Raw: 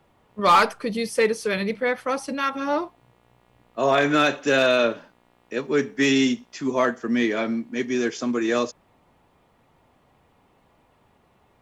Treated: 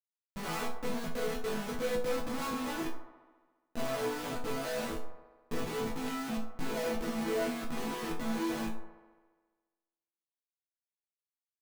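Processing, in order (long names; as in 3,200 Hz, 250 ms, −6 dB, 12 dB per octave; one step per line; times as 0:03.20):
every overlapping window played backwards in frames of 60 ms
low-pass filter 5,100 Hz
spectral tilt −4 dB per octave
in parallel at +1 dB: downward compressor 8 to 1, threshold −26 dBFS, peak gain reduction 16 dB
on the sum: gain on a spectral selection 0:06.63–0:08.07, 350–840 Hz +7 dB
comparator with hysteresis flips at −28 dBFS
resonators tuned to a chord E3 sus4, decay 0.31 s
delay with a band-pass on its return 69 ms, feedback 71%, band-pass 730 Hz, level −10 dB
rectangular room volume 1,000 cubic metres, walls furnished, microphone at 0.32 metres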